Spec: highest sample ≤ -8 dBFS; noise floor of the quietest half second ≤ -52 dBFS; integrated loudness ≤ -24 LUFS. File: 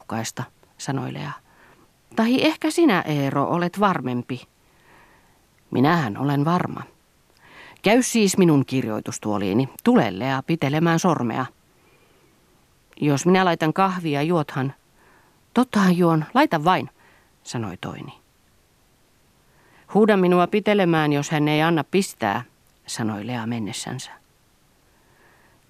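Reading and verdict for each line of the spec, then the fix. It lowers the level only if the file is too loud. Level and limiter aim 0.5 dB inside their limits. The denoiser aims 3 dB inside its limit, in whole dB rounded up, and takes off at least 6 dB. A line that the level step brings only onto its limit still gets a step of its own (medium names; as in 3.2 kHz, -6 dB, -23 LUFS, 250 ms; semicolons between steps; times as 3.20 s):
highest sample -4.5 dBFS: fail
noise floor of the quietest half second -60 dBFS: pass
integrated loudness -21.5 LUFS: fail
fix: trim -3 dB; peak limiter -8.5 dBFS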